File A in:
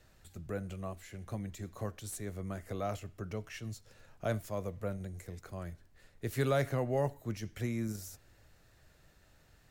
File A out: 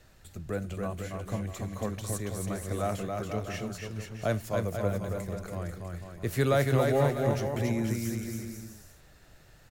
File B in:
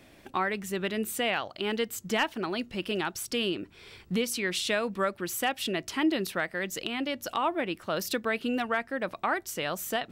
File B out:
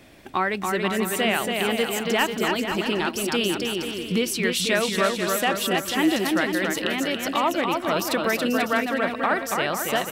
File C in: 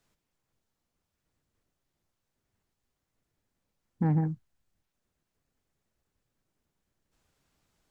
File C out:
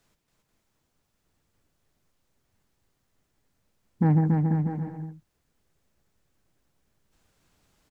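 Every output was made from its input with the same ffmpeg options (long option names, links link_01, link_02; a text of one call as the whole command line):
ffmpeg -i in.wav -af "aecho=1:1:280|490|647.5|765.6|854.2:0.631|0.398|0.251|0.158|0.1,volume=5dB" out.wav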